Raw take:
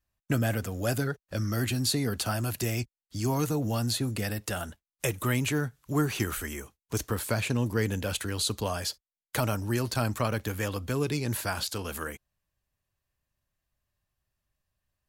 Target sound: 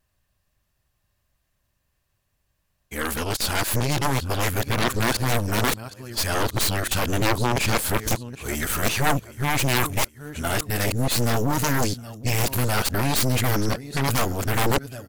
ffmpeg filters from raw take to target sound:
-af "areverse,aecho=1:1:769|1538|2307:0.106|0.0381|0.0137,aeval=exprs='0.211*(cos(1*acos(clip(val(0)/0.211,-1,1)))-cos(1*PI/2))+0.075*(cos(3*acos(clip(val(0)/0.211,-1,1)))-cos(3*PI/2))+0.0422*(cos(7*acos(clip(val(0)/0.211,-1,1)))-cos(7*PI/2))+0.0335*(cos(8*acos(clip(val(0)/0.211,-1,1)))-cos(8*PI/2))':c=same,volume=6.5dB"

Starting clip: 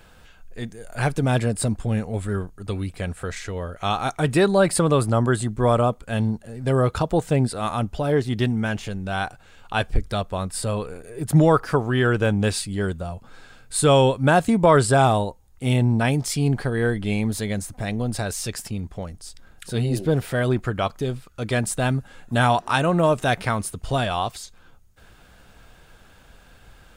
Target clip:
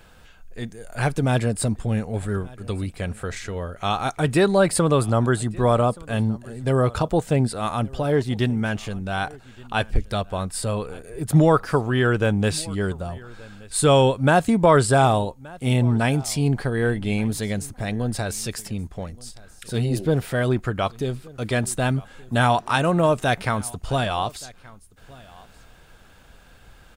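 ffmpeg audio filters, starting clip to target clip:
-af "aecho=1:1:1175:0.0708"

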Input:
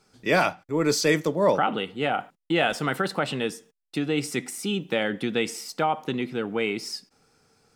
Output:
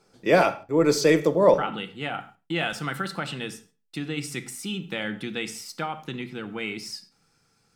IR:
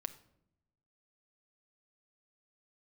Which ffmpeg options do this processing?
-filter_complex "[0:a]asetnsamples=n=441:p=0,asendcmd='1.54 equalizer g -7',equalizer=f=500:w=0.81:g=7[a];[1:a]atrim=start_sample=2205,afade=t=out:st=0.21:d=0.01,atrim=end_sample=9702,asetrate=42777,aresample=44100[b];[a][b]afir=irnorm=-1:irlink=0"

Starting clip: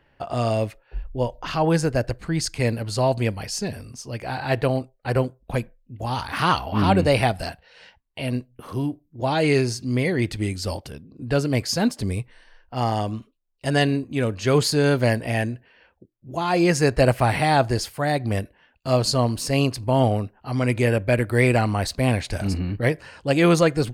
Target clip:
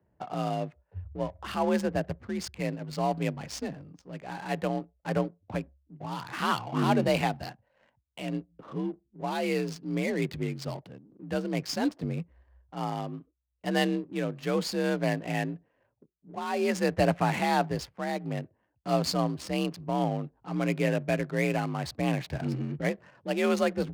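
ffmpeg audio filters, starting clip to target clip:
-af "afreqshift=47,adynamicsmooth=sensitivity=7.5:basefreq=690,tremolo=f=0.58:d=0.31,volume=-6.5dB"

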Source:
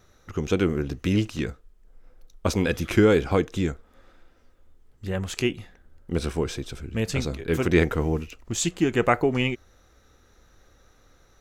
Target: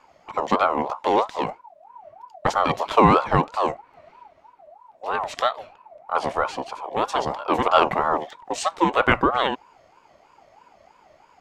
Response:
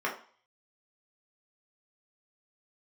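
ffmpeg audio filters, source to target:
-af "aemphasis=mode=reproduction:type=50fm,aeval=exprs='val(0)*sin(2*PI*800*n/s+800*0.25/3.1*sin(2*PI*3.1*n/s))':c=same,volume=5dB"

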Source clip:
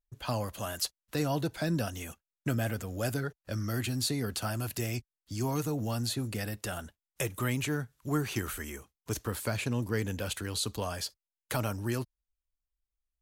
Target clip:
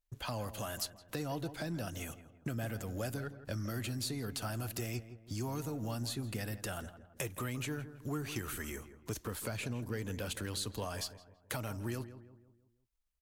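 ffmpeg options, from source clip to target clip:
-filter_complex "[0:a]aeval=exprs='if(lt(val(0),0),0.708*val(0),val(0))':c=same,acompressor=threshold=-41dB:ratio=2.5,aeval=exprs='(tanh(20*val(0)+0.6)-tanh(0.6))/20':c=same,asplit=2[a][b];[b]adelay=165,lowpass=f=1.5k:p=1,volume=-12dB,asplit=2[c][d];[d]adelay=165,lowpass=f=1.5k:p=1,volume=0.46,asplit=2[e][f];[f]adelay=165,lowpass=f=1.5k:p=1,volume=0.46,asplit=2[g][h];[h]adelay=165,lowpass=f=1.5k:p=1,volume=0.46,asplit=2[i][j];[j]adelay=165,lowpass=f=1.5k:p=1,volume=0.46[k];[c][e][g][i][k]amix=inputs=5:normalize=0[l];[a][l]amix=inputs=2:normalize=0,volume=6dB"

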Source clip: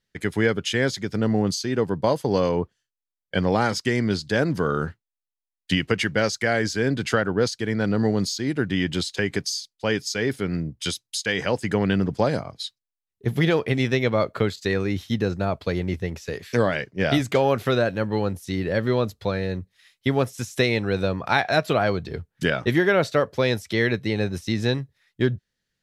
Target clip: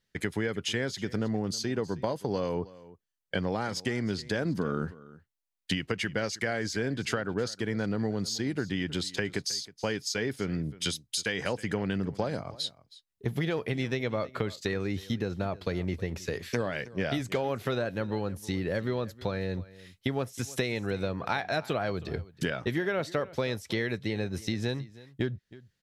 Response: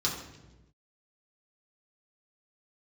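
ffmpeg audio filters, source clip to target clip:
-filter_complex "[0:a]asettb=1/sr,asplit=3[a][b][c];[a]atrim=end=4.454[d];[b]atrim=start=4.45:end=4.87,asetpts=PTS-STARTPTS,afade=t=in:d=0.004:c=qsin,afade=t=out:st=0.416:d=0.004:c=qsin,equalizer=f=230:t=o:w=1.1:g=8[e];[c]atrim=start=4.866[f];[d][e]acrossfade=d=0.004:c1=hsin:c2=qsin[g];[g][f]acrossfade=d=0.004:c1=qsin:c2=hsin,acompressor=threshold=-28dB:ratio=4,aecho=1:1:318:0.106"

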